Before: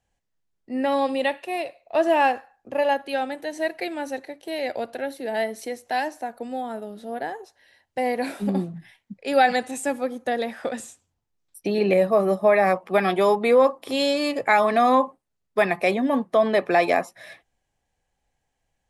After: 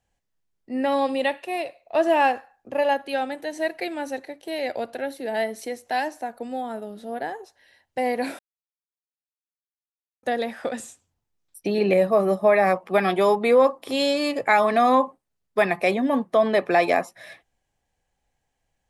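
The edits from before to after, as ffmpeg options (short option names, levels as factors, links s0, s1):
-filter_complex "[0:a]asplit=3[s0][s1][s2];[s0]atrim=end=8.39,asetpts=PTS-STARTPTS,afade=t=out:st=8.386:d=0.004:c=hsin[s3];[s1]atrim=start=8.39:end=10.23,asetpts=PTS-STARTPTS,volume=0[s4];[s2]atrim=start=10.23,asetpts=PTS-STARTPTS,afade=t=in:d=0.004:c=hsin[s5];[s3][s4][s5]concat=n=3:v=0:a=1"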